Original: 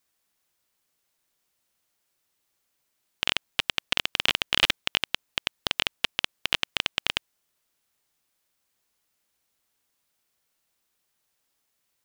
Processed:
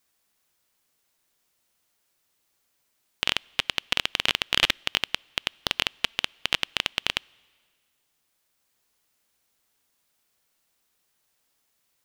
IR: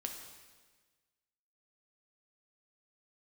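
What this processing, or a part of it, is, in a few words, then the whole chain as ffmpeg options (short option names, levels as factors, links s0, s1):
ducked reverb: -filter_complex "[0:a]asplit=3[s0][s1][s2];[1:a]atrim=start_sample=2205[s3];[s1][s3]afir=irnorm=-1:irlink=0[s4];[s2]apad=whole_len=531091[s5];[s4][s5]sidechaincompress=threshold=0.01:ratio=3:attack=20:release=1040,volume=0.562[s6];[s0][s6]amix=inputs=2:normalize=0"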